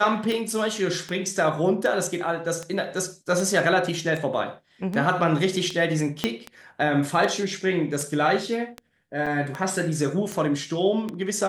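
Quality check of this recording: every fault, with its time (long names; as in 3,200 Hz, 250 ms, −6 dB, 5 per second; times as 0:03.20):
scratch tick 78 rpm
0:06.24: click −8 dBFS
0:09.26–0:09.27: drop-out 5.4 ms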